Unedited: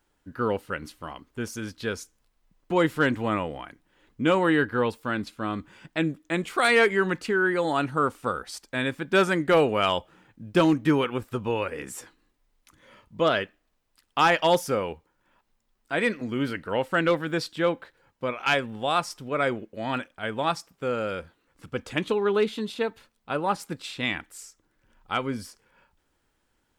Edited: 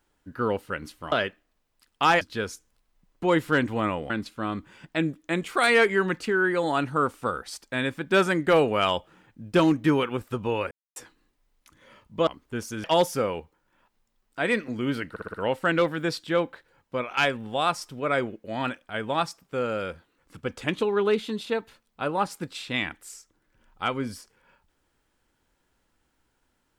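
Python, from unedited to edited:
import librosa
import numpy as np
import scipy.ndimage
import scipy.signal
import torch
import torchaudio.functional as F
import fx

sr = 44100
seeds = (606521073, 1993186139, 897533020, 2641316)

y = fx.edit(x, sr, fx.swap(start_s=1.12, length_s=0.57, other_s=13.28, other_length_s=1.09),
    fx.cut(start_s=3.58, length_s=1.53),
    fx.silence(start_s=11.72, length_s=0.25),
    fx.stutter(start_s=16.63, slice_s=0.06, count=5), tone=tone)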